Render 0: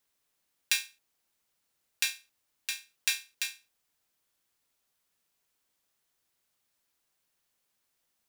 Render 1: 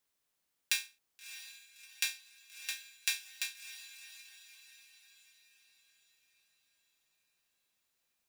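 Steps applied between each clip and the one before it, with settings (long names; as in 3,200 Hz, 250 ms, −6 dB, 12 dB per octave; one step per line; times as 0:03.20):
feedback delay with all-pass diffusion 644 ms, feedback 48%, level −12.5 dB
level −4 dB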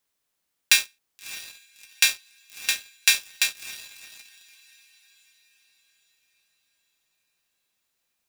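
leveller curve on the samples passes 2
level +7.5 dB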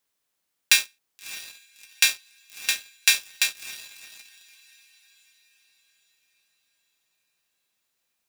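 low-shelf EQ 110 Hz −4.5 dB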